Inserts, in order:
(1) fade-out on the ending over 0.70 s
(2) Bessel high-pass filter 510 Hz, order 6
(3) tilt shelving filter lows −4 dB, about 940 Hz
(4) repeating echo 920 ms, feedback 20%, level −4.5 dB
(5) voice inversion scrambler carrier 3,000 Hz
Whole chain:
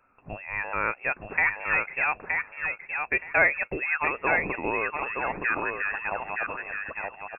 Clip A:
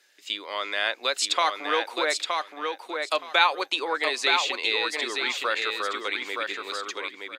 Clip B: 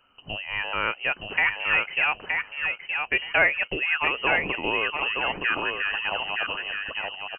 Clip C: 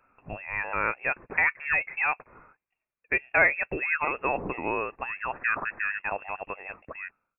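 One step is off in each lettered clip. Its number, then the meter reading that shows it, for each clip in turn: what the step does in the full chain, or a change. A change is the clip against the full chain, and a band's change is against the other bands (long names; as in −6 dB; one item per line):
5, 2 kHz band −5.5 dB
2, 2 kHz band +2.0 dB
4, change in momentary loudness spread +6 LU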